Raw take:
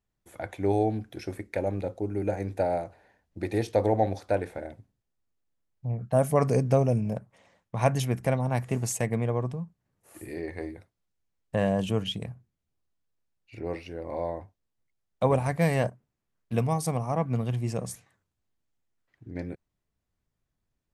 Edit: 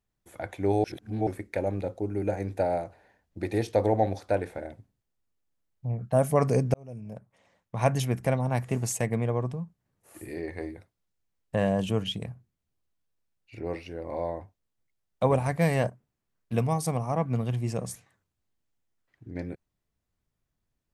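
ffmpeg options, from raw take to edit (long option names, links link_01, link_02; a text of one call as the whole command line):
ffmpeg -i in.wav -filter_complex "[0:a]asplit=4[link_01][link_02][link_03][link_04];[link_01]atrim=end=0.842[link_05];[link_02]atrim=start=0.838:end=1.272,asetpts=PTS-STARTPTS,areverse[link_06];[link_03]atrim=start=1.268:end=6.74,asetpts=PTS-STARTPTS,afade=type=out:start_time=5.468:duration=0.004:curve=hsin[link_07];[link_04]atrim=start=6.74,asetpts=PTS-STARTPTS,afade=type=in:duration=1.18[link_08];[link_05][link_06]acrossfade=duration=0.004:curve1=hsin:curve2=hsin[link_09];[link_07][link_08]concat=n=2:v=0:a=1[link_10];[link_09][link_10]acrossfade=duration=0.004:curve1=hsin:curve2=hsin" out.wav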